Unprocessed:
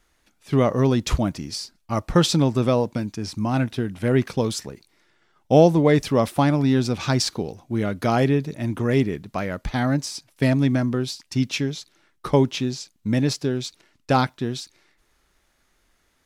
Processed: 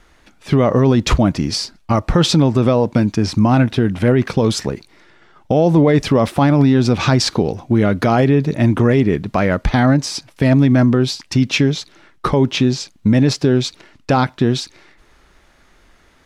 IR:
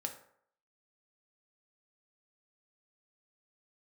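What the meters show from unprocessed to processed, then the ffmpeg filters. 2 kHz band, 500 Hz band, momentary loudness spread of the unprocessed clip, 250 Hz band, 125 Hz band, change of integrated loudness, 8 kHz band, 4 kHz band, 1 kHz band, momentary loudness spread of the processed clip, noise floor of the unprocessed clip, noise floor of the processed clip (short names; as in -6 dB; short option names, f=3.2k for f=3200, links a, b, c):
+7.0 dB, +5.5 dB, 11 LU, +7.5 dB, +7.5 dB, +6.5 dB, +4.5 dB, +7.0 dB, +5.5 dB, 7 LU, -67 dBFS, -52 dBFS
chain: -filter_complex "[0:a]aemphasis=mode=reproduction:type=50kf,asplit=2[a][b];[b]acompressor=threshold=-28dB:ratio=6,volume=2dB[c];[a][c]amix=inputs=2:normalize=0,alimiter=limit=-13dB:level=0:latency=1:release=62,volume=8dB"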